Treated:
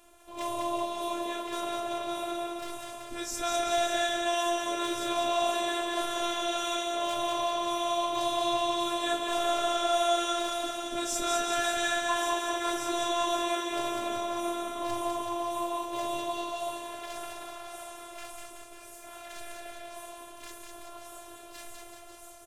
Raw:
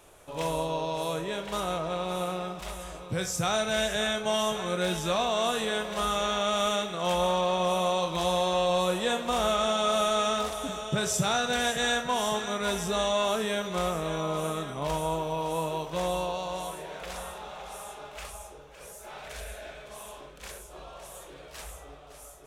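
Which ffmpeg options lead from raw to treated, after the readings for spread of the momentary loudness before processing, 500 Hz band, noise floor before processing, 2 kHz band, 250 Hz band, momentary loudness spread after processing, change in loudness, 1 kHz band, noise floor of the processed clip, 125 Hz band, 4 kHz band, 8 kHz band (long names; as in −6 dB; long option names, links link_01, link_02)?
18 LU, −3.0 dB, −48 dBFS, −2.0 dB, −1.5 dB, 18 LU, −2.0 dB, −0.5 dB, −48 dBFS, −19.0 dB, −1.5 dB, −1.0 dB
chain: -af "aecho=1:1:200|380|542|687.8|819:0.631|0.398|0.251|0.158|0.1,afftfilt=real='hypot(re,im)*cos(PI*b)':imag='0':win_size=512:overlap=0.75"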